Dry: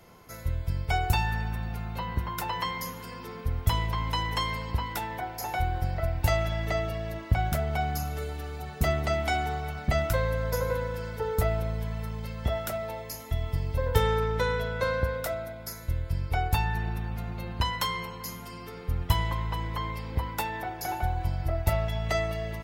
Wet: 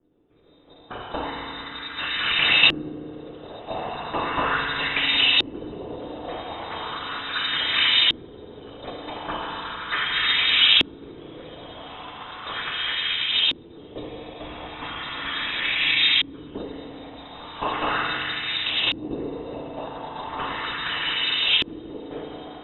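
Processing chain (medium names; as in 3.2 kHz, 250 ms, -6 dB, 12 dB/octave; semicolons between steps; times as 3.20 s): on a send: echo that smears into a reverb 1358 ms, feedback 47%, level -3.5 dB; on the sum: level rider gain up to 6.5 dB; bass shelf 250 Hz +8.5 dB; noise-vocoded speech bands 16; in parallel at -1 dB: level held to a coarse grid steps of 13 dB; on the sum: crackle 450 per s -38 dBFS; frequency inversion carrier 3.8 kHz; FDN reverb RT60 2.6 s, low-frequency decay 1.4×, high-frequency decay 0.75×, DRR 0.5 dB; LFO low-pass saw up 0.37 Hz 310–2900 Hz; trim -4.5 dB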